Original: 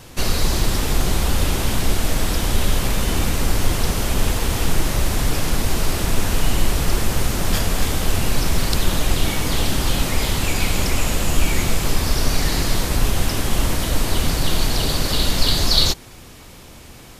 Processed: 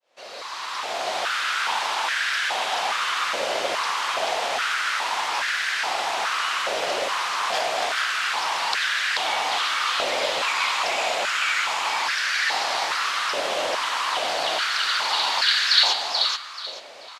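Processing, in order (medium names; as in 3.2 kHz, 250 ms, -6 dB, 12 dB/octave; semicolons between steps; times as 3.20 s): fade-in on the opening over 1.24 s; low-pass 4.1 kHz 12 dB/octave; tilt shelf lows -4 dB, about 1.5 kHz; feedback delay 434 ms, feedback 26%, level -4 dB; step-sequenced high-pass 2.4 Hz 590–1600 Hz; trim -1.5 dB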